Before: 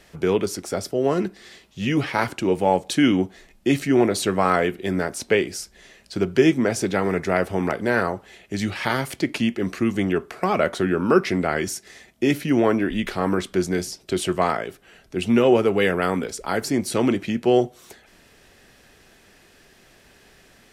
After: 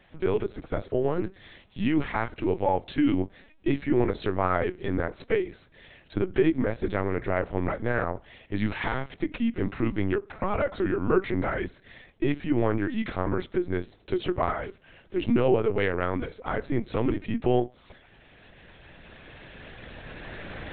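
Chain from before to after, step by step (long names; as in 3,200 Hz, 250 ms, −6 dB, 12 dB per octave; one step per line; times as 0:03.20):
camcorder AGC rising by 7.4 dB per second
dynamic equaliser 3,000 Hz, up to −5 dB, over −44 dBFS, Q 1.9
linear-prediction vocoder at 8 kHz pitch kept
level −5.5 dB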